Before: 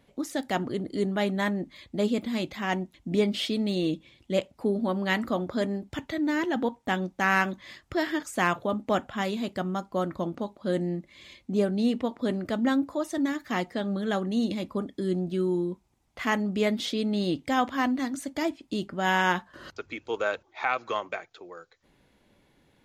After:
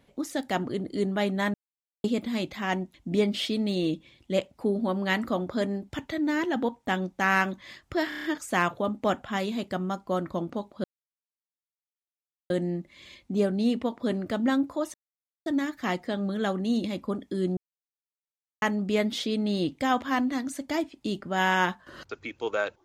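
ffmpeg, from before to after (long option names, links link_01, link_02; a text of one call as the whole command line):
ffmpeg -i in.wav -filter_complex "[0:a]asplit=12[link_01][link_02][link_03][link_04][link_05][link_06][link_07][link_08][link_09][link_10][link_11][link_12];[link_01]atrim=end=1.54,asetpts=PTS-STARTPTS,afade=type=out:start_time=1.536:duration=0.004:curve=hsin[link_13];[link_02]atrim=start=1.54:end=2.04,asetpts=PTS-STARTPTS,volume=0[link_14];[link_03]atrim=start=2.04:end=8.122,asetpts=PTS-STARTPTS,afade=type=in:duration=0.004:curve=hsin[link_15];[link_04]atrim=start=8.088:end=8.122[link_16];[link_05]atrim=start=8.088:end=8.122[link_17];[link_06]atrim=start=8.088:end=8.122[link_18];[link_07]atrim=start=8.088:end=8.122[link_19];[link_08]atrim=start=8.088:end=10.69,asetpts=PTS-STARTPTS,afade=type=out:start_time=2.598:duration=0.004:curve=hsin,apad=pad_dur=1.66[link_20];[link_09]atrim=start=10.69:end=13.13,asetpts=PTS-STARTPTS,afade=type=in:duration=0.004:curve=hsin,afade=type=out:start_time=2.436:duration=0.004:curve=hsin,apad=pad_dur=0.52[link_21];[link_10]atrim=start=13.13:end=15.24,asetpts=PTS-STARTPTS,afade=type=in:duration=0.004:curve=hsin,afade=type=out:start_time=2.106:duration=0.004:curve=hsin[link_22];[link_11]atrim=start=15.24:end=16.29,asetpts=PTS-STARTPTS,volume=0[link_23];[link_12]atrim=start=16.29,asetpts=PTS-STARTPTS,afade=type=in:duration=0.004:curve=hsin[link_24];[link_13][link_14][link_15]concat=n=3:v=0:a=1[link_25];[link_25][link_16]acrossfade=duration=0.004:curve1=hsin:curve2=hsin[link_26];[link_26][link_17]acrossfade=duration=0.004:curve1=hsin:curve2=hsin[link_27];[link_27][link_18]acrossfade=duration=0.004:curve1=hsin:curve2=hsin[link_28];[link_28][link_19]acrossfade=duration=0.004:curve1=hsin:curve2=hsin[link_29];[link_20][link_21][link_22][link_23][link_24]concat=n=5:v=0:a=1[link_30];[link_29][link_30]acrossfade=duration=0.004:curve1=hsin:curve2=hsin" out.wav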